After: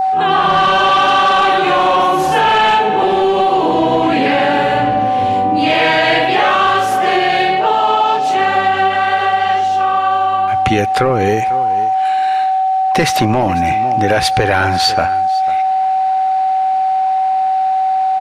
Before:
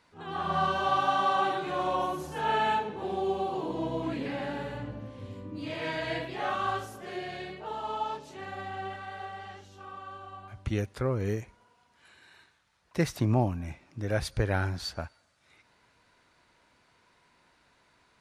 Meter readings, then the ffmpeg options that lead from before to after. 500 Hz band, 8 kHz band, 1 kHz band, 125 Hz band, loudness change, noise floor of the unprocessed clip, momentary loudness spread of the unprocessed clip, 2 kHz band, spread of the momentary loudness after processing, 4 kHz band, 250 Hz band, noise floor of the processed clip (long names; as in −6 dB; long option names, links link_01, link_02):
+17.5 dB, +19.0 dB, +22.5 dB, +9.5 dB, +18.5 dB, −67 dBFS, 16 LU, +20.5 dB, 4 LU, +22.0 dB, +15.5 dB, −15 dBFS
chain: -filter_complex "[0:a]highshelf=frequency=4300:gain=-7,aecho=1:1:496:0.0841,asplit=2[link_01][link_02];[link_02]asoftclip=type=tanh:threshold=-27.5dB,volume=-6dB[link_03];[link_01][link_03]amix=inputs=2:normalize=0,highpass=frequency=400:poles=1,aeval=exprs='val(0)+0.0178*sin(2*PI*760*n/s)':channel_layout=same,apsyclip=25.5dB,acompressor=threshold=-8dB:ratio=10,adynamicequalizer=threshold=0.0355:dfrequency=2800:dqfactor=1.6:tfrequency=2800:tqfactor=1.6:attack=5:release=100:ratio=0.375:range=2:mode=boostabove:tftype=bell,volume=-1.5dB"